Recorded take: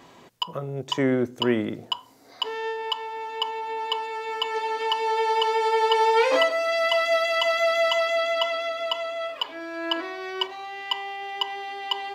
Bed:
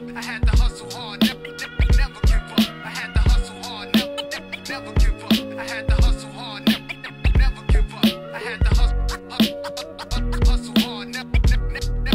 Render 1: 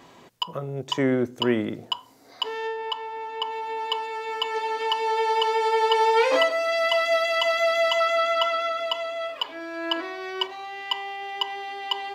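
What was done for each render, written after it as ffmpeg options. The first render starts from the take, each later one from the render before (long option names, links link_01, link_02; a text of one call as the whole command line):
ffmpeg -i in.wav -filter_complex "[0:a]asettb=1/sr,asplit=3[link_01][link_02][link_03];[link_01]atrim=end=2.674[link_04];[link_02]atrim=start=2.67:end=3.51,asetpts=PTS-STARTPTS,afade=type=in:duration=0.004:curve=qsin,afade=type=out:start_time=0.836:duration=0.004:curve=qsin,highshelf=frequency=3600:gain=-7.5[link_05];[link_03]atrim=start=3.506[link_06];[link_04][link_05]acrossfade=duration=0.004:curve1=hsin:curve2=qsin[link_07];[link_07][link_06]acrossfade=duration=0.004:curve1=qsin:curve2=hsin,asettb=1/sr,asplit=3[link_08][link_09][link_10];[link_08]atrim=end=8.004[link_11];[link_09]atrim=start=8:end=8.8,asetpts=PTS-STARTPTS,afade=type=in:duration=0.004:curve=qsin,afade=type=out:start_time=0.796:duration=0.004:curve=qsin,equalizer=frequency=1400:width=6.8:gain=11[link_12];[link_10]atrim=start=8.796[link_13];[link_11][link_12]acrossfade=duration=0.004:curve1=hsin:curve2=qsin[link_14];[link_14][link_13]acrossfade=duration=0.004:curve1=qsin:curve2=hsin" out.wav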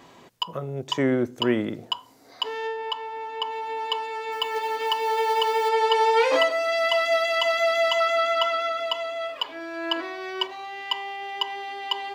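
ffmpeg -i in.wav -filter_complex "[0:a]asettb=1/sr,asplit=3[link_01][link_02][link_03];[link_01]atrim=end=4.324[link_04];[link_02]atrim=start=4.32:end=5.69,asetpts=PTS-STARTPTS,afade=type=in:duration=0.004:curve=qsin,afade=type=out:start_time=1.366:duration=0.004:curve=qsin,acrusher=bits=6:mode=log:mix=0:aa=0.000001[link_05];[link_03]atrim=start=5.686[link_06];[link_04][link_05]acrossfade=duration=0.004:curve1=hsin:curve2=qsin[link_07];[link_07][link_06]acrossfade=duration=0.004:curve1=qsin:curve2=hsin" out.wav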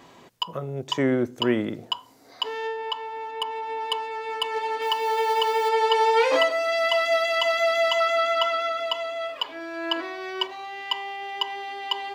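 ffmpeg -i in.wav -filter_complex "[0:a]asettb=1/sr,asplit=3[link_01][link_02][link_03];[link_01]atrim=end=3.314[link_04];[link_02]atrim=start=3.31:end=4.82,asetpts=PTS-STARTPTS,afade=type=in:duration=0.004:curve=qsin,afade=type=out:start_time=1.506:duration=0.004:curve=qsin,adynamicsmooth=sensitivity=5.5:basefreq=3900[link_05];[link_03]atrim=start=4.816[link_06];[link_04][link_05]acrossfade=duration=0.004:curve1=hsin:curve2=qsin[link_07];[link_07][link_06]acrossfade=duration=0.004:curve1=qsin:curve2=hsin" out.wav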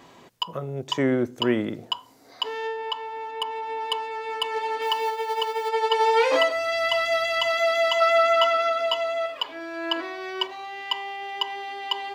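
ffmpeg -i in.wav -filter_complex "[0:a]asplit=3[link_01][link_02][link_03];[link_01]afade=type=out:start_time=5.09:duration=0.02[link_04];[link_02]agate=range=-33dB:threshold=-19dB:ratio=3:release=100:detection=peak,afade=type=in:start_time=5.09:duration=0.02,afade=type=out:start_time=5.99:duration=0.02[link_05];[link_03]afade=type=in:start_time=5.99:duration=0.02[link_06];[link_04][link_05][link_06]amix=inputs=3:normalize=0,asplit=3[link_07][link_08][link_09];[link_07]afade=type=out:start_time=6.52:duration=0.02[link_10];[link_08]asubboost=boost=10.5:cutoff=110,afade=type=in:start_time=6.52:duration=0.02,afade=type=out:start_time=7.5:duration=0.02[link_11];[link_09]afade=type=in:start_time=7.5:duration=0.02[link_12];[link_10][link_11][link_12]amix=inputs=3:normalize=0,asettb=1/sr,asplit=3[link_13][link_14][link_15];[link_13]atrim=end=8.004[link_16];[link_14]atrim=start=8:end=9.26,asetpts=PTS-STARTPTS,afade=type=in:duration=0.004:curve=qsin,afade=type=out:start_time=1.256:duration=0.004:curve=qsin,asplit=2[link_17][link_18];[link_18]adelay=15,volume=-3dB[link_19];[link_17][link_19]amix=inputs=2:normalize=0,atrim=end_sample=55566[link_20];[link_15]atrim=start=9.256[link_21];[link_16][link_20]acrossfade=duration=0.004:curve1=hsin:curve2=qsin[link_22];[link_22][link_21]acrossfade=duration=0.004:curve1=qsin:curve2=hsin" out.wav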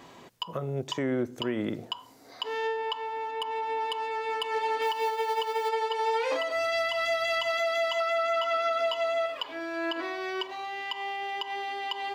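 ffmpeg -i in.wav -af "acompressor=threshold=-23dB:ratio=6,alimiter=limit=-20dB:level=0:latency=1:release=102" out.wav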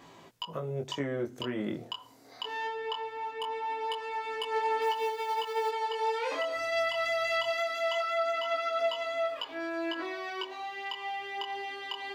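ffmpeg -i in.wav -af "flanger=delay=18:depth=7.9:speed=0.21" out.wav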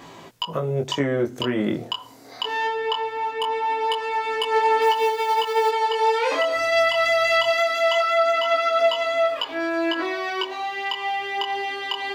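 ffmpeg -i in.wav -af "volume=10.5dB" out.wav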